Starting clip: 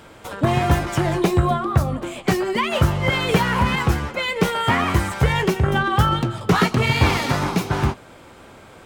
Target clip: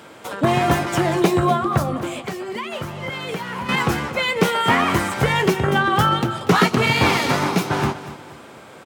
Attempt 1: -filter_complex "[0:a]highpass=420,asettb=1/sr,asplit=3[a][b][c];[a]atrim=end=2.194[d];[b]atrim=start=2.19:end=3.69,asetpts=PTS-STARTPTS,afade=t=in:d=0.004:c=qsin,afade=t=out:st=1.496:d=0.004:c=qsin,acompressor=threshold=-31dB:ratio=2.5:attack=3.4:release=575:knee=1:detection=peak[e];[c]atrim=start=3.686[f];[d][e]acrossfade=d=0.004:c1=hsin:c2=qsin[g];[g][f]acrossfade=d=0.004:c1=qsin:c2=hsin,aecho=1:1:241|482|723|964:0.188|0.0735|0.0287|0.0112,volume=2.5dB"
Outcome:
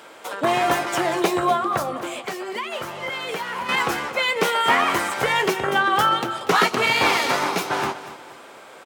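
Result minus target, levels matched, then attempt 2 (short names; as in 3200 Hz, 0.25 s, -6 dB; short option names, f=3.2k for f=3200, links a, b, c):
125 Hz band -13.0 dB
-filter_complex "[0:a]highpass=160,asettb=1/sr,asplit=3[a][b][c];[a]atrim=end=2.194[d];[b]atrim=start=2.19:end=3.69,asetpts=PTS-STARTPTS,afade=t=in:d=0.004:c=qsin,afade=t=out:st=1.496:d=0.004:c=qsin,acompressor=threshold=-31dB:ratio=2.5:attack=3.4:release=575:knee=1:detection=peak[e];[c]atrim=start=3.686[f];[d][e]acrossfade=d=0.004:c1=hsin:c2=qsin[g];[g][f]acrossfade=d=0.004:c1=qsin:c2=hsin,aecho=1:1:241|482|723|964:0.188|0.0735|0.0287|0.0112,volume=2.5dB"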